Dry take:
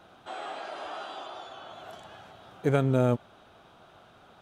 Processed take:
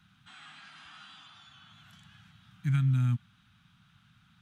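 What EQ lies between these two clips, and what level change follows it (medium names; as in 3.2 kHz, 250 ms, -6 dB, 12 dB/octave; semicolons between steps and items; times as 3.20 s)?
Chebyshev band-stop 130–1800 Hz, order 2; peaking EQ 190 Hz +12 dB 1.7 oct; -5.0 dB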